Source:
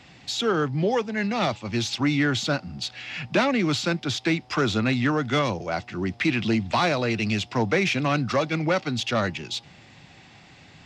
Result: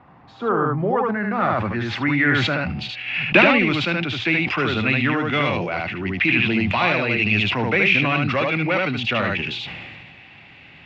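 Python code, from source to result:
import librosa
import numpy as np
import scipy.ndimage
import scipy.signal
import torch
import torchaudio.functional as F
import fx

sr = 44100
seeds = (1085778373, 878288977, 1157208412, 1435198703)

y = fx.transient(x, sr, attack_db=7, sustain_db=-9, at=(2.84, 3.81))
y = fx.filter_sweep_lowpass(y, sr, from_hz=1100.0, to_hz=2600.0, start_s=0.71, end_s=2.89, q=3.1)
y = y + 10.0 ** (-4.0 / 20.0) * np.pad(y, (int(75 * sr / 1000.0), 0))[:len(y)]
y = fx.sustainer(y, sr, db_per_s=27.0)
y = F.gain(torch.from_numpy(y), -1.0).numpy()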